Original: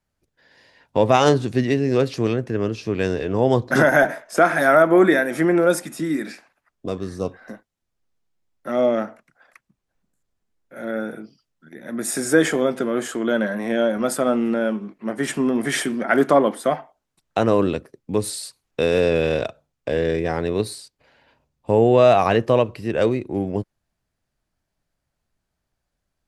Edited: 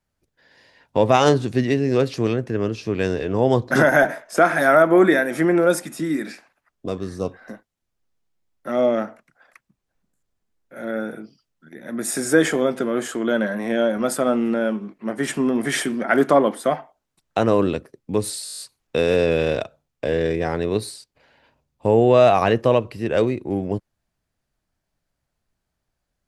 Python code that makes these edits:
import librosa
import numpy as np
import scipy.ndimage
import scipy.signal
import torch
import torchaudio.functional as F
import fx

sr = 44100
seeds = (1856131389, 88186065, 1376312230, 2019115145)

y = fx.edit(x, sr, fx.stutter(start_s=18.44, slice_s=0.02, count=9), tone=tone)